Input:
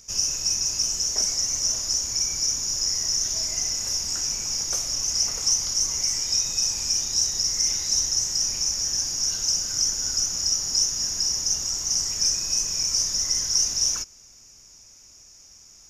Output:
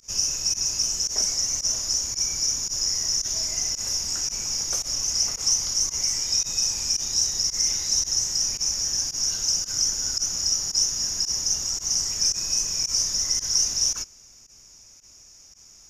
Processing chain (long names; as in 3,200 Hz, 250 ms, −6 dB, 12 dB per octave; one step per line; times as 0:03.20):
fake sidechain pumping 112 BPM, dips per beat 1, −23 dB, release 65 ms